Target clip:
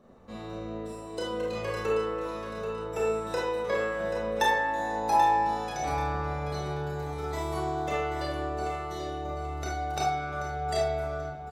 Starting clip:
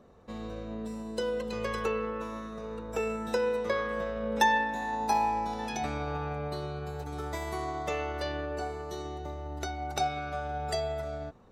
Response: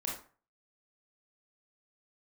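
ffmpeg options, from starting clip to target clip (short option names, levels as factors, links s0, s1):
-filter_complex "[0:a]aecho=1:1:784|1568|2352|3136:0.355|0.117|0.0386|0.0128[s0];[1:a]atrim=start_sample=2205[s1];[s0][s1]afir=irnorm=-1:irlink=0"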